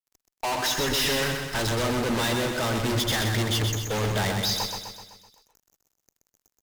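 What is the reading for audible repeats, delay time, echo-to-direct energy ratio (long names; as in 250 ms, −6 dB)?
6, 127 ms, −3.5 dB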